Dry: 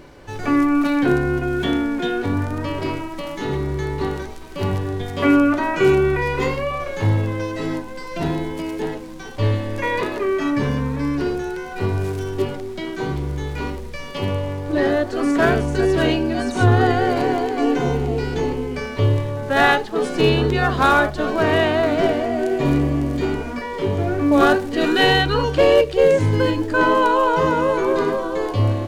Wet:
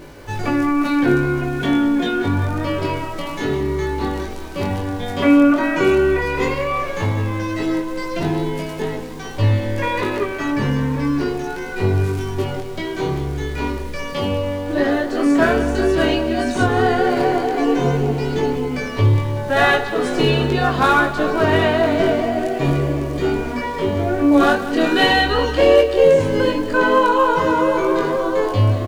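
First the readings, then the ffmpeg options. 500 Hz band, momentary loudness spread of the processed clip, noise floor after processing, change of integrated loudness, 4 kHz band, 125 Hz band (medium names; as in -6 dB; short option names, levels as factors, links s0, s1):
+1.5 dB, 10 LU, -28 dBFS, +1.5 dB, +1.5 dB, +1.0 dB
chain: -filter_complex "[0:a]asplit=2[s0][s1];[s1]acompressor=threshold=0.0562:ratio=6,volume=0.841[s2];[s0][s2]amix=inputs=2:normalize=0,acrusher=bits=9:dc=4:mix=0:aa=0.000001,flanger=delay=19.5:depth=5.3:speed=0.1,aecho=1:1:186|372|558|744|930|1116:0.211|0.118|0.0663|0.0371|0.0208|0.0116,volume=1.26"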